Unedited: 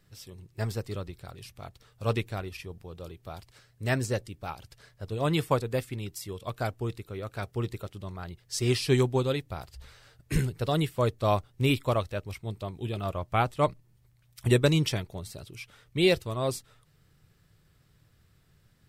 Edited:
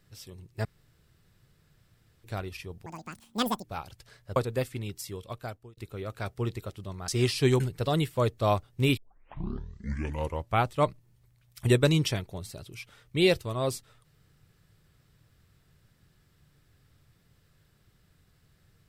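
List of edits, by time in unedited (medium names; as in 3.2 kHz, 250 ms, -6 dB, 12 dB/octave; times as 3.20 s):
0.65–2.24 s: room tone
2.86–4.36 s: speed 192%
5.08–5.53 s: delete
6.25–6.94 s: fade out
8.25–8.55 s: delete
9.07–10.41 s: delete
11.78 s: tape start 1.58 s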